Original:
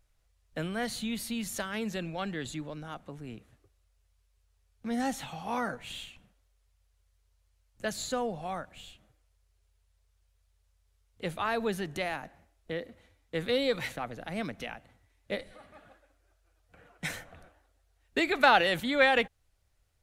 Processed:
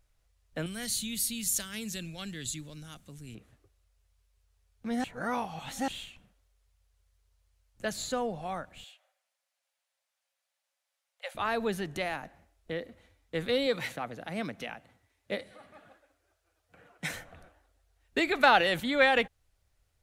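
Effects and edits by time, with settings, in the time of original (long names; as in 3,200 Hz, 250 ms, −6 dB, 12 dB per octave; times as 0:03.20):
0:00.66–0:03.35: drawn EQ curve 120 Hz 0 dB, 830 Hz −14 dB, 7,600 Hz +11 dB
0:05.04–0:05.88: reverse
0:08.84–0:11.35: Chebyshev high-pass with heavy ripple 530 Hz, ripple 3 dB
0:13.66–0:17.14: high-pass filter 100 Hz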